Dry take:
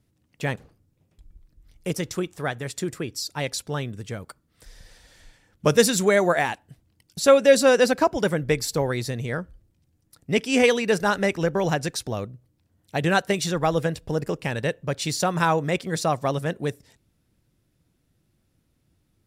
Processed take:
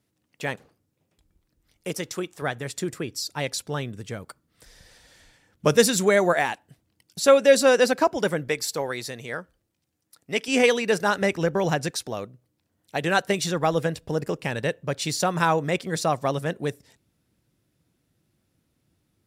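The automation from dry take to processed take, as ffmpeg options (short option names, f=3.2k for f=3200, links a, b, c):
-af "asetnsamples=n=441:p=0,asendcmd='2.42 highpass f 96;6.33 highpass f 210;8.48 highpass f 580;10.48 highpass f 200;11.22 highpass f 71;11.91 highpass f 290;13.19 highpass f 110',highpass=f=320:p=1"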